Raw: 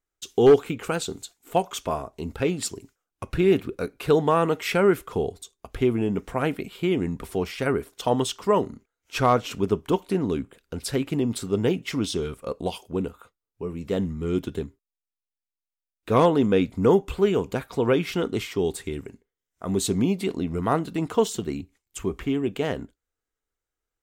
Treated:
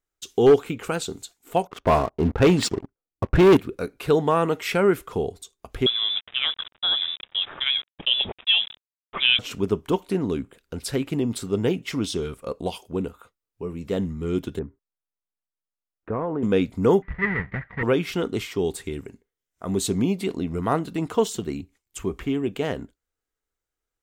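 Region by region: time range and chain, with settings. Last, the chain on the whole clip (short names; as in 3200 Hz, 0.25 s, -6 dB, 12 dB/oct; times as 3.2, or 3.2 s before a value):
1.67–3.57 low-pass opened by the level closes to 440 Hz, open at -20 dBFS + sample leveller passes 3
5.86–9.39 HPF 160 Hz 24 dB/oct + sample gate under -36 dBFS + inverted band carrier 3700 Hz
14.59–16.43 block floating point 7-bit + LPF 1700 Hz 24 dB/oct + compressor 12:1, threshold -22 dBFS
17.02–17.83 half-waves squared off + ladder low-pass 2000 Hz, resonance 90% + resonant low shelf 220 Hz +8 dB, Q 1.5
whole clip: dry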